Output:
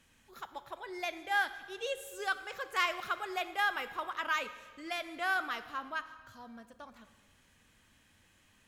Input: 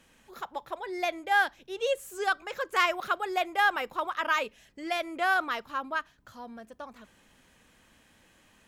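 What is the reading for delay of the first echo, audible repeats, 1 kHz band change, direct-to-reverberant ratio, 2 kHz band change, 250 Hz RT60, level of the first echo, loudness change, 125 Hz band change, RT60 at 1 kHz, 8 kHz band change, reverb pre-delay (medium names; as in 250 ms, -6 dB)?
no echo, no echo, -7.0 dB, 11.0 dB, -5.0 dB, 1.4 s, no echo, -6.0 dB, no reading, 1.5 s, -3.5 dB, 5 ms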